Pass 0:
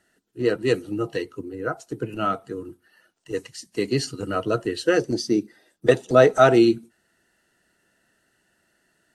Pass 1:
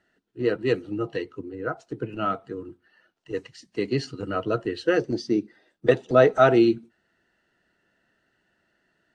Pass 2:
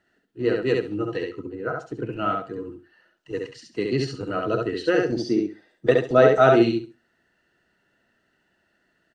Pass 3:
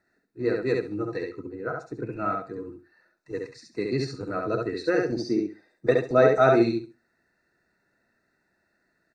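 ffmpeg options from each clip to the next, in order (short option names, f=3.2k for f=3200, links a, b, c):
-af "lowpass=3.9k,volume=-2dB"
-af "aecho=1:1:68|136|204:0.708|0.149|0.0312"
-af "asuperstop=centerf=3100:order=20:qfactor=3.5,volume=-3dB"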